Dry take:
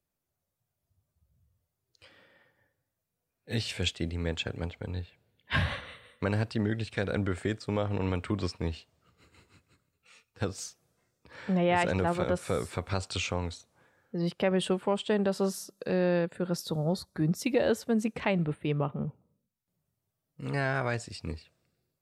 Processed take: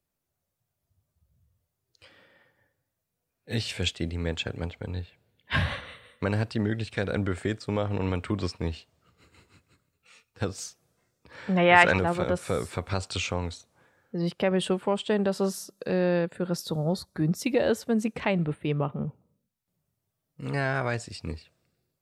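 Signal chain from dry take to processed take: 11.57–11.99 bell 1700 Hz +11.5 dB 2.4 oct; gain +2 dB

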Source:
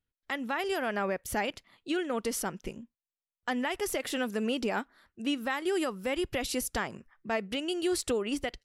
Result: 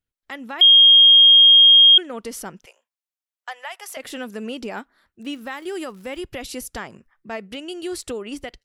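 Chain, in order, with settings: 0.61–1.98 bleep 3240 Hz -7 dBFS; 2.65–3.97 steep high-pass 590 Hz 36 dB/oct; 5.21–6.2 crackle 260/s -43 dBFS

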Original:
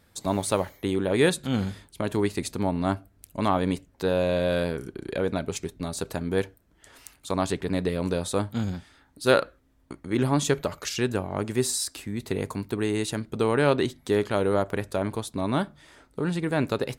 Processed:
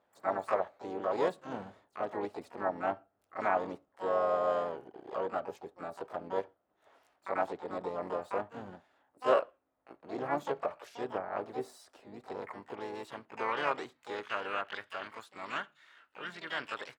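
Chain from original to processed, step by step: band-pass sweep 680 Hz -> 1500 Hz, 12.05–14.9; harmoniser -5 st -17 dB, +3 st -6 dB, +12 st -6 dB; gain -3 dB

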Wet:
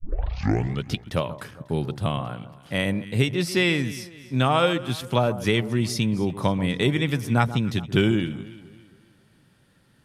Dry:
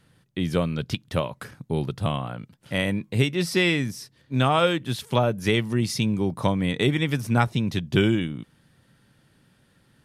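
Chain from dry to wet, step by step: tape start at the beginning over 0.85 s; echo with dull and thin repeats by turns 0.136 s, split 1400 Hz, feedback 62%, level -13.5 dB

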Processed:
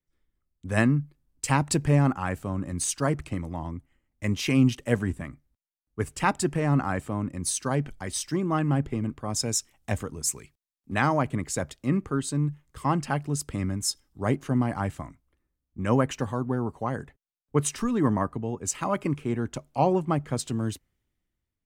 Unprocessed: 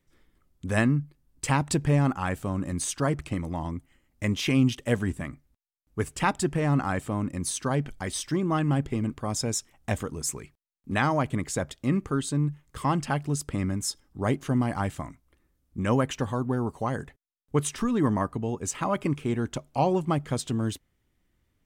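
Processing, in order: dynamic EQ 3400 Hz, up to -6 dB, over -56 dBFS, Q 6.7; three-band expander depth 40%

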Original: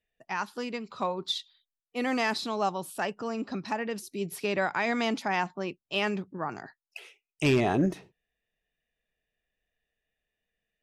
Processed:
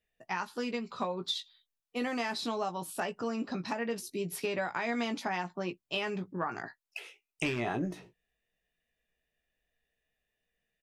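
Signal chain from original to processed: 6.32–7.78 dynamic EQ 1700 Hz, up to +7 dB, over -44 dBFS, Q 0.74; compressor 10:1, threshold -30 dBFS, peak gain reduction 12.5 dB; doubler 17 ms -7 dB

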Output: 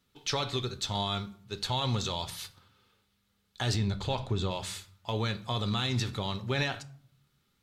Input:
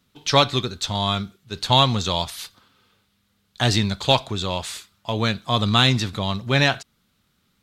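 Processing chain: 3.74–4.51 tilt -2 dB/oct; limiter -13 dBFS, peak gain reduction 10.5 dB; reverb RT60 0.55 s, pre-delay 5 ms, DRR 11 dB; gain -7 dB

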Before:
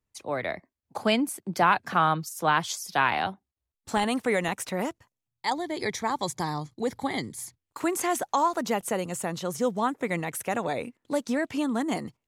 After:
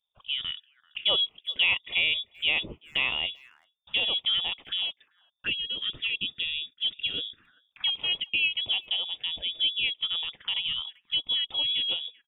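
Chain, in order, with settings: inverted band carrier 3600 Hz; speakerphone echo 0.39 s, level -25 dB; envelope phaser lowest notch 300 Hz, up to 1600 Hz, full sweep at -28.5 dBFS

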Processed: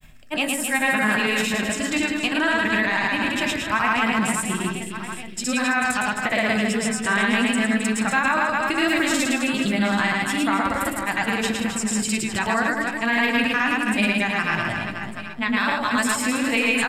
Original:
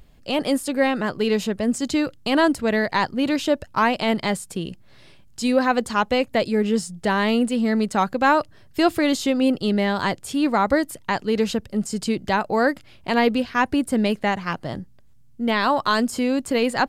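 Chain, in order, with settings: high shelf 12000 Hz +8 dB; grains, pitch spread up and down by 0 st; bell 1900 Hz +7 dB 2.2 oct; on a send: reverse bouncing-ball echo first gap 0.11 s, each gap 1.4×, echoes 5; on the sum: limiter -10 dBFS, peak gain reduction 10.5 dB; reverb RT60 0.40 s, pre-delay 3 ms, DRR 10 dB; reverse; upward compressor, threshold -26 dBFS; reverse; gain +1 dB

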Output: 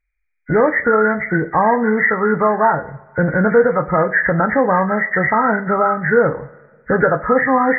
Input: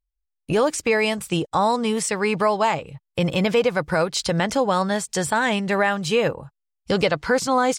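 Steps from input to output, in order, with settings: nonlinear frequency compression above 1200 Hz 4:1; two-slope reverb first 0.32 s, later 1.7 s, from -20 dB, DRR 7 dB; gain +4.5 dB

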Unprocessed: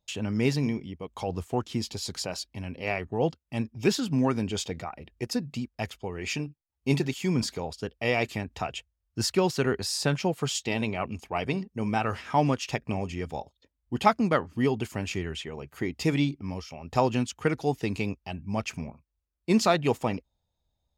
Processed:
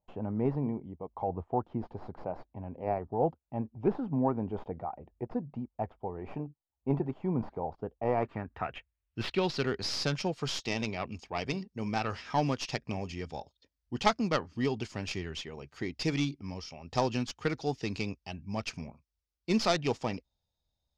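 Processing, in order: tracing distortion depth 0.21 ms; low-pass sweep 830 Hz -> 5300 Hz, 7.99–9.72; gain -5.5 dB

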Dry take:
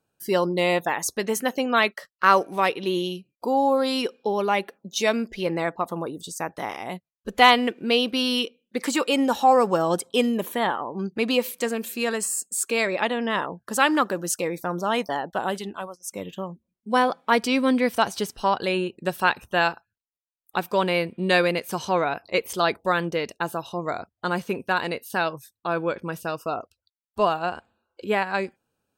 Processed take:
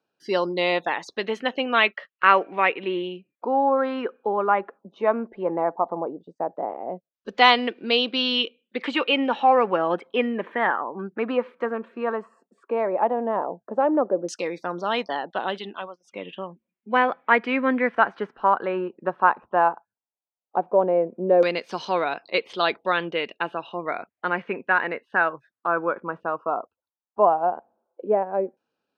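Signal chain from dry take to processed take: LFO low-pass saw down 0.14 Hz 550–5500 Hz; three-band isolator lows -21 dB, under 190 Hz, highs -14 dB, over 3900 Hz; gain -1 dB

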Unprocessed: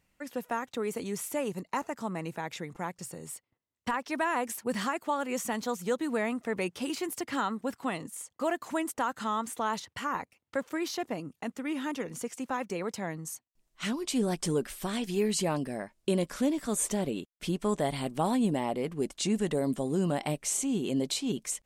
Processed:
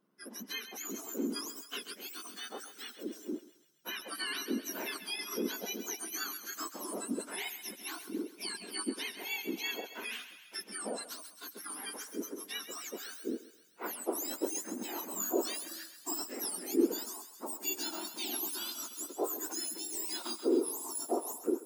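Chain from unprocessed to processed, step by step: spectrum mirrored in octaves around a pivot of 1700 Hz; thinning echo 0.133 s, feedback 65%, high-pass 850 Hz, level -11 dB; gain -3.5 dB

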